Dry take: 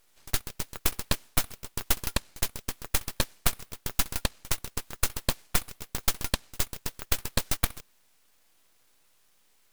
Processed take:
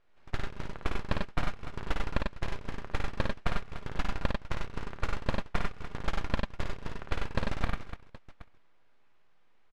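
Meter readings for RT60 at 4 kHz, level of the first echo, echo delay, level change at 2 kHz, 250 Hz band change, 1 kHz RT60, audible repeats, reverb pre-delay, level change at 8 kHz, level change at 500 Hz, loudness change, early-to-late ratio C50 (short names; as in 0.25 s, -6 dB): none, -4.5 dB, 54 ms, -2.0 dB, +1.5 dB, none, 4, none, -23.5 dB, +1.0 dB, -6.0 dB, none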